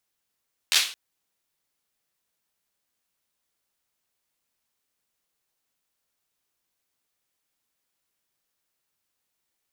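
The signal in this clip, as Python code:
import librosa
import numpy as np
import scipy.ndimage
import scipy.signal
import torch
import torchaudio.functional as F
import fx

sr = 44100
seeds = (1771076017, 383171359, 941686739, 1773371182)

y = fx.drum_clap(sr, seeds[0], length_s=0.22, bursts=4, spacing_ms=12, hz=3300.0, decay_s=0.39)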